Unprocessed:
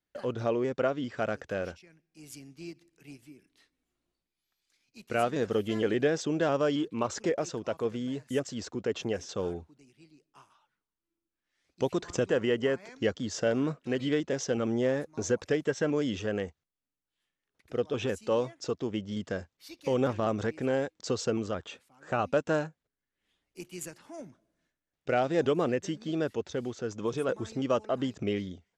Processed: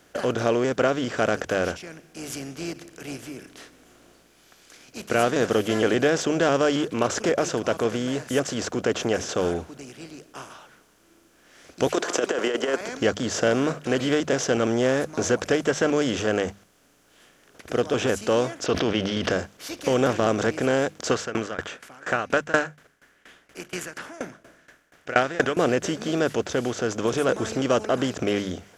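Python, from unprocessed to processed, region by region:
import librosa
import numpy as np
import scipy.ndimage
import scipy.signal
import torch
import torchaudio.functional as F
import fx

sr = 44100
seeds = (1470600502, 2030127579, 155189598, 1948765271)

y = fx.chain(x, sr, fx.highpass(hz=340.0, slope=24),
    fx.over_compress(threshold_db=-30.0, ratio=-0.5), at=(11.87, 12.81))
y = fx.chain(y, sr, fx.savgol(points=15),
    fx.peak_eq(hz=2900.0, db=8.5, octaves=1.3),
    fx.sustainer(db_per_s=28.0), at=(18.66, 19.31))
y = fx.chain(y, sr, fx.peak_eq(hz=1700.0, db=14.5, octaves=1.3),
    fx.tremolo_decay(direction='decaying', hz=4.2, depth_db=26), at=(21.11, 25.57))
y = fx.bin_compress(y, sr, power=0.6)
y = fx.high_shelf(y, sr, hz=9000.0, db=8.5)
y = fx.hum_notches(y, sr, base_hz=50, count=4)
y = F.gain(torch.from_numpy(y), 3.0).numpy()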